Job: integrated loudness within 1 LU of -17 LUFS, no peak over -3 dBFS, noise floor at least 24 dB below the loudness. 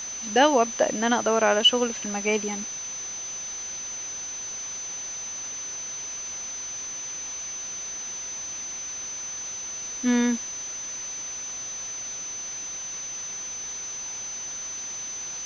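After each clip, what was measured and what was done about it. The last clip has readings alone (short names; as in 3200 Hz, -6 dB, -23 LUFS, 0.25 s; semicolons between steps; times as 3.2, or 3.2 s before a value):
steady tone 6100 Hz; tone level -32 dBFS; noise floor -35 dBFS; noise floor target -52 dBFS; loudness -27.5 LUFS; peak -5.5 dBFS; loudness target -17.0 LUFS
-> notch 6100 Hz, Q 30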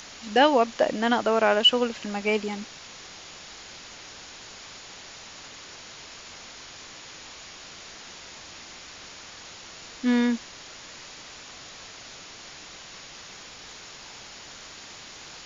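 steady tone none; noise floor -45 dBFS; noise floor target -47 dBFS
-> denoiser 6 dB, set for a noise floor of -45 dBFS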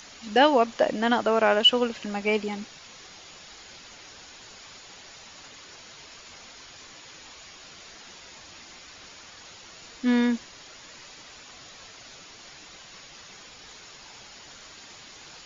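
noise floor -48 dBFS; loudness -23.0 LUFS; peak -5.5 dBFS; loudness target -17.0 LUFS
-> gain +6 dB; limiter -3 dBFS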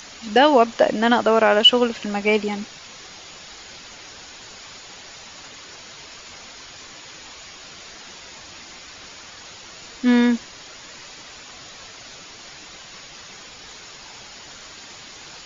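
loudness -17.5 LUFS; peak -3.0 dBFS; noise floor -42 dBFS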